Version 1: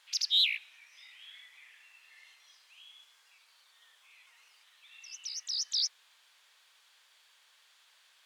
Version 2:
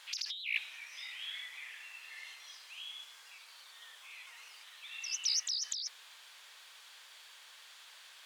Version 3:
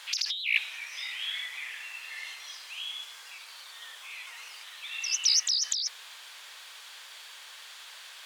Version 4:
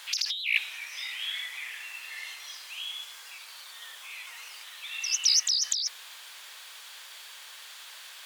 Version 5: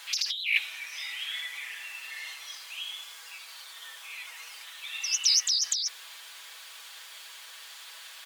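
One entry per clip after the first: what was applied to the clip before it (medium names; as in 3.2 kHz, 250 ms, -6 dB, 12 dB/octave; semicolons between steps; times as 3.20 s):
compressor with a negative ratio -39 dBFS, ratio -1; trim +2.5 dB
steep high-pass 320 Hz; trim +8.5 dB
treble shelf 12 kHz +10 dB
comb 6.1 ms; trim -1.5 dB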